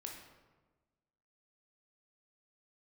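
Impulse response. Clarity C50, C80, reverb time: 3.5 dB, 6.5 dB, 1.3 s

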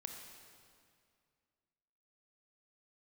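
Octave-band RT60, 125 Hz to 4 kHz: 2.5, 2.4, 2.2, 2.2, 2.1, 1.9 seconds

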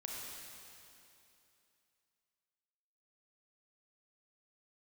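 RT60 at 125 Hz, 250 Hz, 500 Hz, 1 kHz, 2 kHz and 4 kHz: 2.8, 2.9, 2.9, 2.8, 2.7, 2.7 seconds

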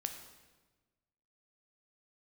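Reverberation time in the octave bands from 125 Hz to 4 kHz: 1.7, 1.5, 1.4, 1.2, 1.1, 1.0 seconds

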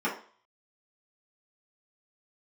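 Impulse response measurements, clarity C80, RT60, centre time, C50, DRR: 12.5 dB, 0.45 s, 25 ms, 7.5 dB, −8.0 dB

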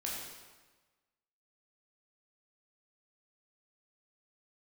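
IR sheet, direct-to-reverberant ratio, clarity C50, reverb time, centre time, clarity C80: −4.5 dB, 0.0 dB, 1.3 s, 79 ms, 2.5 dB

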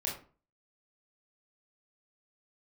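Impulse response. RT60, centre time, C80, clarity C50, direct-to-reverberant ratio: 0.40 s, 31 ms, 12.0 dB, 6.5 dB, −4.0 dB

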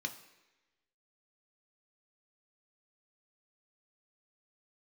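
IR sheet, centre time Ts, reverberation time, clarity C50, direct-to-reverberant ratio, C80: 11 ms, 1.1 s, 12.5 dB, 4.5 dB, 14.5 dB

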